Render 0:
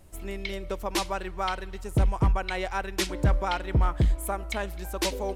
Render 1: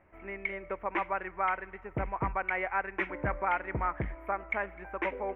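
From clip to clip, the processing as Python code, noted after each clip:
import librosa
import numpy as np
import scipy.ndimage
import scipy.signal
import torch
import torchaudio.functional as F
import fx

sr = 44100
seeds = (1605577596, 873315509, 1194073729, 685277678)

y = scipy.signal.sosfilt(scipy.signal.ellip(4, 1.0, 50, 2200.0, 'lowpass', fs=sr, output='sos'), x)
y = fx.tilt_eq(y, sr, slope=3.5)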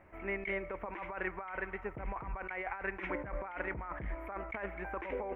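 y = fx.over_compress(x, sr, threshold_db=-38.0, ratio=-1.0)
y = y * 10.0 ** (-1.0 / 20.0)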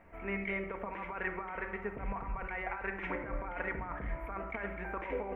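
y = fx.room_shoebox(x, sr, seeds[0], volume_m3=2400.0, walls='furnished', distance_m=1.7)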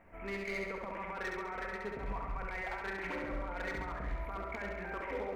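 y = np.clip(x, -10.0 ** (-32.5 / 20.0), 10.0 ** (-32.5 / 20.0))
y = fx.echo_feedback(y, sr, ms=68, feedback_pct=58, wet_db=-4.0)
y = y * 10.0 ** (-2.0 / 20.0)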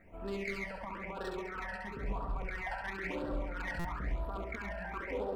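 y = fx.phaser_stages(x, sr, stages=12, low_hz=370.0, high_hz=2200.0, hz=0.99, feedback_pct=5)
y = fx.buffer_glitch(y, sr, at_s=(3.79,), block=256, repeats=9)
y = y * 10.0 ** (3.0 / 20.0)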